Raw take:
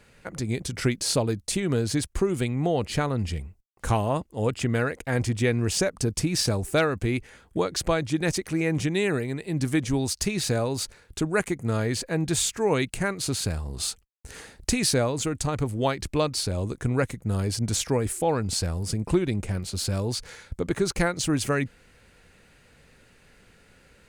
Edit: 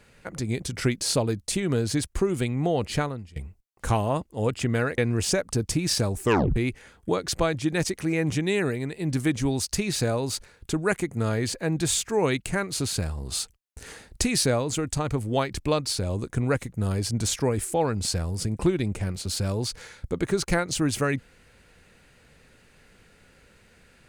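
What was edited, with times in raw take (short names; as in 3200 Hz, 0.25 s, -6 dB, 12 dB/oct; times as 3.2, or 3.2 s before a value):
3.01–3.36 fade out quadratic, to -20.5 dB
4.98–5.46 cut
6.7 tape stop 0.34 s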